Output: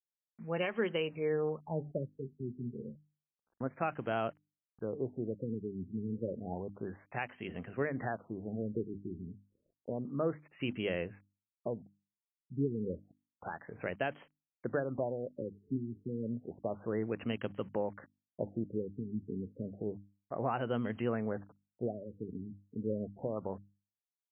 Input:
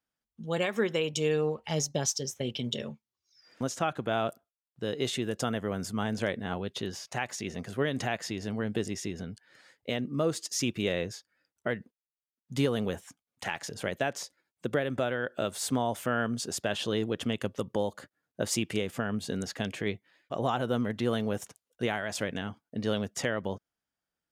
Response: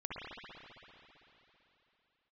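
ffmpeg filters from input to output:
-af "aeval=exprs='val(0)*gte(abs(val(0)),0.00237)':c=same,bandreject=f=50:t=h:w=6,bandreject=f=100:t=h:w=6,bandreject=f=150:t=h:w=6,bandreject=f=200:t=h:w=6,bandreject=f=250:t=h:w=6,bandreject=f=300:t=h:w=6,afftfilt=real='re*lt(b*sr/1024,420*pow(3300/420,0.5+0.5*sin(2*PI*0.3*pts/sr)))':imag='im*lt(b*sr/1024,420*pow(3300/420,0.5+0.5*sin(2*PI*0.3*pts/sr)))':win_size=1024:overlap=0.75,volume=0.596"

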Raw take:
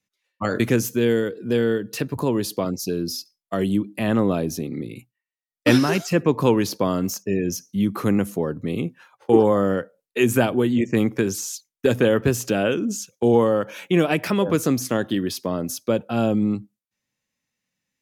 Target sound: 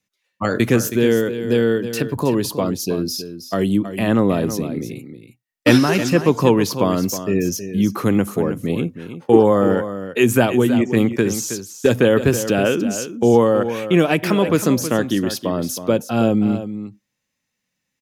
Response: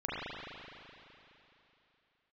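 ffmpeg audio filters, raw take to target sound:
-af "aecho=1:1:320:0.282,volume=1.5"

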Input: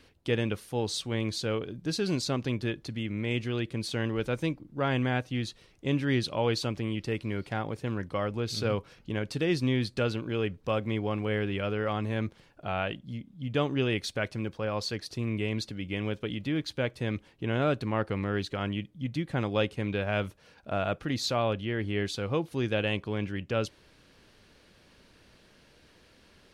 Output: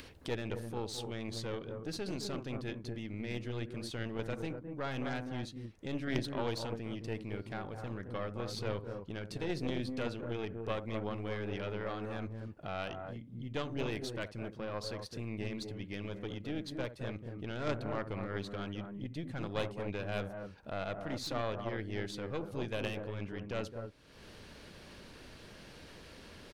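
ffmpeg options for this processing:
-filter_complex "[0:a]acrossover=split=1600[s0][s1];[s0]aecho=1:1:67.06|212.8|247.8:0.251|0.355|0.447[s2];[s1]volume=18.8,asoftclip=hard,volume=0.0531[s3];[s2][s3]amix=inputs=2:normalize=0,aeval=exprs='0.266*(cos(1*acos(clip(val(0)/0.266,-1,1)))-cos(1*PI/2))+0.0596*(cos(3*acos(clip(val(0)/0.266,-1,1)))-cos(3*PI/2))+0.0376*(cos(4*acos(clip(val(0)/0.266,-1,1)))-cos(4*PI/2))+0.015*(cos(5*acos(clip(val(0)/0.266,-1,1)))-cos(5*PI/2))':c=same,acompressor=mode=upward:threshold=0.0224:ratio=2.5,volume=0.562"

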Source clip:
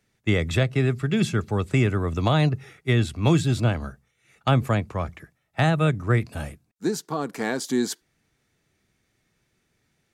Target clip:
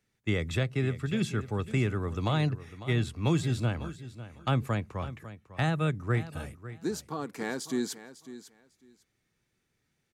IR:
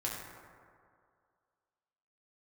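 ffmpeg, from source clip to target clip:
-af "equalizer=f=660:t=o:w=0.29:g=-4,aecho=1:1:550|1100:0.188|0.0339,volume=0.447"

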